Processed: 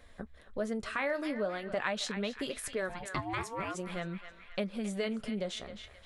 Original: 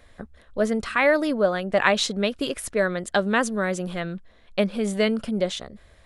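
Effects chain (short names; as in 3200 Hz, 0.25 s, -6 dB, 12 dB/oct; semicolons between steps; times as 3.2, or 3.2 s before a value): flange 0.44 Hz, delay 3.8 ms, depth 7.7 ms, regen -61%; 2.88–3.74 ring modulator 320 Hz -> 900 Hz; narrowing echo 0.265 s, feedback 56%, band-pass 2200 Hz, level -12 dB; compressor 2:1, threshold -37 dBFS, peak gain reduction 10.5 dB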